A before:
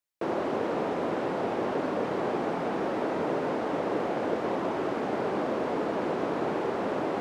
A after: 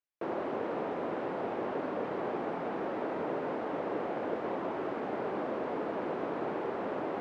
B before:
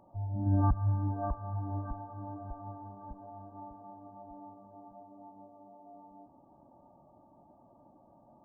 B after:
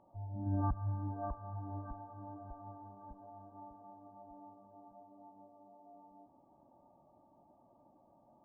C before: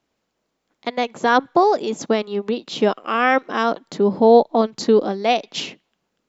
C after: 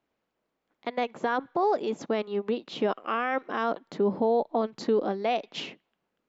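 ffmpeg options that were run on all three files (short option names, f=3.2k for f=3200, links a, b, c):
-af "bass=f=250:g=-3,treble=f=4k:g=-12,alimiter=limit=-11.5dB:level=0:latency=1:release=31,volume=-5dB"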